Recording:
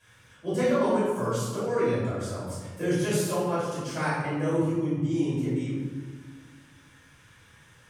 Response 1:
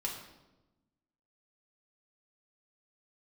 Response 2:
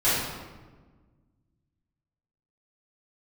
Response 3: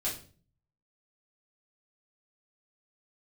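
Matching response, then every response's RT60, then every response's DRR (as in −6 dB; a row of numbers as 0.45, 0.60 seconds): 2; 1.0, 1.4, 0.40 seconds; −3.0, −14.0, −7.5 decibels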